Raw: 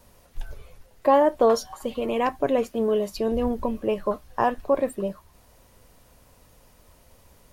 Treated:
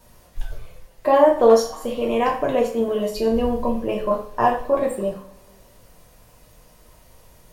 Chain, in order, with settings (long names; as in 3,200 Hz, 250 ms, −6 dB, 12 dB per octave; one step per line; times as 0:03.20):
coupled-rooms reverb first 0.43 s, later 2.2 s, from −26 dB, DRR −1.5 dB